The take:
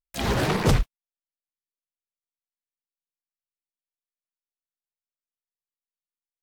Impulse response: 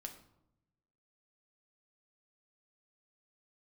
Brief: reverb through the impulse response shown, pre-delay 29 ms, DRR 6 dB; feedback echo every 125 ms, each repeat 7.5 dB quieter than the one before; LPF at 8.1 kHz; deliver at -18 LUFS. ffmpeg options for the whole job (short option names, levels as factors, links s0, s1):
-filter_complex "[0:a]lowpass=8100,aecho=1:1:125|250|375|500|625:0.422|0.177|0.0744|0.0312|0.0131,asplit=2[s0][s1];[1:a]atrim=start_sample=2205,adelay=29[s2];[s1][s2]afir=irnorm=-1:irlink=0,volume=0.794[s3];[s0][s3]amix=inputs=2:normalize=0,volume=1.78"